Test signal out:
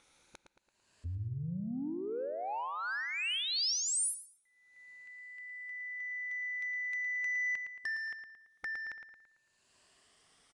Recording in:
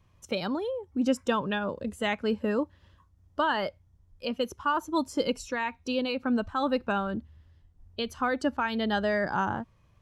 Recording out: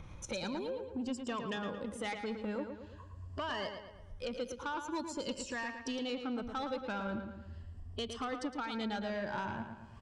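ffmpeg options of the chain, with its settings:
-filter_complex "[0:a]afftfilt=real='re*pow(10,8/40*sin(2*PI*(1.4*log(max(b,1)*sr/1024/100)/log(2)-(0.46)*(pts-256)/sr)))':imag='im*pow(10,8/40*sin(2*PI*(1.4*log(max(b,1)*sr/1024/100)/log(2)-(0.46)*(pts-256)/sr)))':win_size=1024:overlap=0.75,acompressor=mode=upward:threshold=-46dB:ratio=2.5,highshelf=f=4.8k:g=-5.5,acompressor=threshold=-47dB:ratio=2.5,asoftclip=type=tanh:threshold=-36dB,aresample=22050,aresample=44100,asplit=2[a][b];[b]adelay=112,lowpass=f=4.5k:p=1,volume=-7dB,asplit=2[c][d];[d]adelay=112,lowpass=f=4.5k:p=1,volume=0.5,asplit=2[e][f];[f]adelay=112,lowpass=f=4.5k:p=1,volume=0.5,asplit=2[g][h];[h]adelay=112,lowpass=f=4.5k:p=1,volume=0.5,asplit=2[i][j];[j]adelay=112,lowpass=f=4.5k:p=1,volume=0.5,asplit=2[k][l];[l]adelay=112,lowpass=f=4.5k:p=1,volume=0.5[m];[c][e][g][i][k][m]amix=inputs=6:normalize=0[n];[a][n]amix=inputs=2:normalize=0,adynamicequalizer=threshold=0.00112:dfrequency=3000:dqfactor=0.7:tfrequency=3000:tqfactor=0.7:attack=5:release=100:ratio=0.375:range=3.5:mode=boostabove:tftype=highshelf,volume=5dB"

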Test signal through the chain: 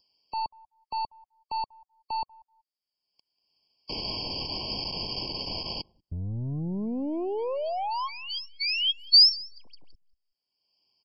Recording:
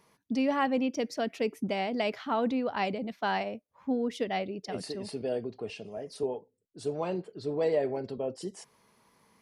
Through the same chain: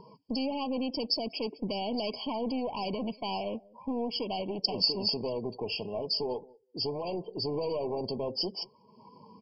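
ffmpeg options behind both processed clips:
-filter_complex "[0:a]asplit=2[a][b];[b]acompressor=threshold=-38dB:ratio=6,volume=2dB[c];[a][c]amix=inputs=2:normalize=0,adynamicequalizer=threshold=0.00398:dfrequency=2300:dqfactor=4.9:tfrequency=2300:tqfactor=4.9:attack=5:release=100:ratio=0.375:range=2:mode=cutabove:tftype=bell,alimiter=limit=-23.5dB:level=0:latency=1:release=74,aeval=exprs='clip(val(0),-1,0.0168)':c=same,aresample=11025,aresample=44100,aecho=1:1:190|380:0.0708|0.0135,afftdn=nr=23:nf=-54,lowshelf=f=68:g=-8,aexciter=amount=10.9:drive=1.5:freq=3.7k,acompressor=mode=upward:threshold=-44dB:ratio=2.5,afftfilt=real='re*eq(mod(floor(b*sr/1024/1100),2),0)':imag='im*eq(mod(floor(b*sr/1024/1100),2),0)':win_size=1024:overlap=0.75,volume=1dB"

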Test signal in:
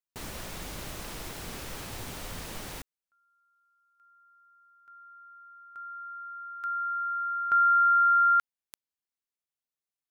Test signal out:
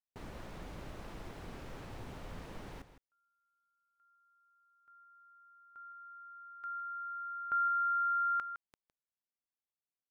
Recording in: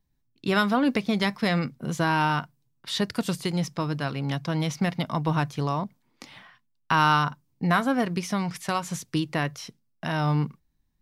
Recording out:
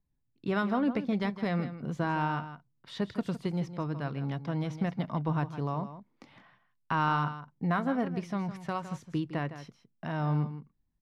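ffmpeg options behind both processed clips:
-af "lowpass=f=1.2k:p=1,aecho=1:1:160:0.251,volume=-5dB"

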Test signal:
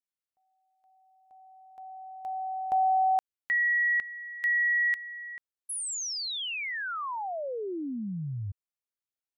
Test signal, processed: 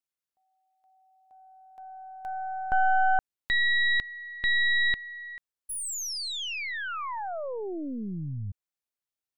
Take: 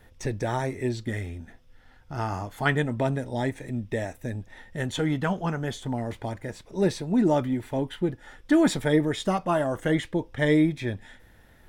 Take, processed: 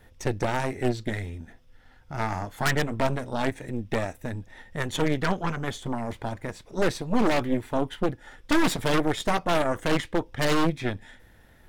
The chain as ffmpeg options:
-af "aeval=exprs='0.335*(cos(1*acos(clip(val(0)/0.335,-1,1)))-cos(1*PI/2))+0.119*(cos(6*acos(clip(val(0)/0.335,-1,1)))-cos(6*PI/2))+0.0266*(cos(8*acos(clip(val(0)/0.335,-1,1)))-cos(8*PI/2))':c=same,aeval=exprs='0.237*(abs(mod(val(0)/0.237+3,4)-2)-1)':c=same"

